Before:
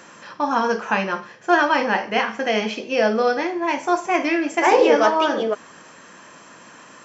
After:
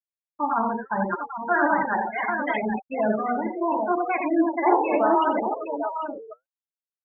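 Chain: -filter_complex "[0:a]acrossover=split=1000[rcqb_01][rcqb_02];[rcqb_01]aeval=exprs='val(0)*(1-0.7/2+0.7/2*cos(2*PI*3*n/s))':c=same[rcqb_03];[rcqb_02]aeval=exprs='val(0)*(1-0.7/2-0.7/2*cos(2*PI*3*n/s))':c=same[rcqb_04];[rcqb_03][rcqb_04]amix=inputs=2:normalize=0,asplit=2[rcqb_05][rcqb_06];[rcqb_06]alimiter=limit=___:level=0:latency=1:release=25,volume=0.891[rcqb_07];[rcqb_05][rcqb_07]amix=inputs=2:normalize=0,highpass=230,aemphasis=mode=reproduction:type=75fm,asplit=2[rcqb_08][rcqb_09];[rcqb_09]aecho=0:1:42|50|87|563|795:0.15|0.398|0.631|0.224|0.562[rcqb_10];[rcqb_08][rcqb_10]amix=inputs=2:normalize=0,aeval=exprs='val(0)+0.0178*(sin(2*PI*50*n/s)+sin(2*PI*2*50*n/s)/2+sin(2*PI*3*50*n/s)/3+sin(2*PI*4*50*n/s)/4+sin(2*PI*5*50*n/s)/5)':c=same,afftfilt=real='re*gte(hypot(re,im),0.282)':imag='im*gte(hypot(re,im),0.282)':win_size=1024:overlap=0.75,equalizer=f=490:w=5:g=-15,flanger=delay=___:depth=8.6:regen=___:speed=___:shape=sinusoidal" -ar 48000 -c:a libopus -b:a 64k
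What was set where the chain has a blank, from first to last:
0.168, 0.5, 71, 0.72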